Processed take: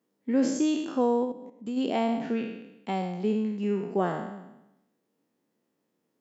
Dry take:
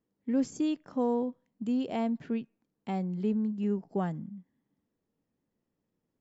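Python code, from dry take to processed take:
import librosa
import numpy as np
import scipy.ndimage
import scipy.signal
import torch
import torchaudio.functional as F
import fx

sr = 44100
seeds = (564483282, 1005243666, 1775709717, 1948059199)

y = fx.spec_trails(x, sr, decay_s=0.91)
y = scipy.signal.sosfilt(scipy.signal.butter(2, 240.0, 'highpass', fs=sr, output='sos'), y)
y = fx.level_steps(y, sr, step_db=12, at=(1.24, 1.76), fade=0.02)
y = F.gain(torch.from_numpy(y), 5.0).numpy()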